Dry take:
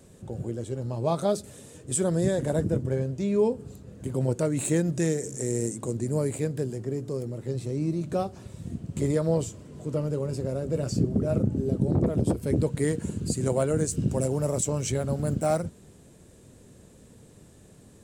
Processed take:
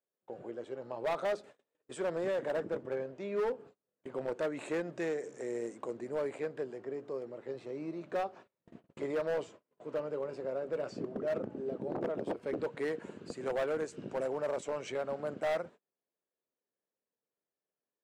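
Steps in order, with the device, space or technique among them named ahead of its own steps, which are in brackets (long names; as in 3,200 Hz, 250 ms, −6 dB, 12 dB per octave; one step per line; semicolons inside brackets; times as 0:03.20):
walkie-talkie (band-pass filter 560–2,200 Hz; hard clipping −28.5 dBFS, distortion −11 dB; noise gate −51 dBFS, range −33 dB)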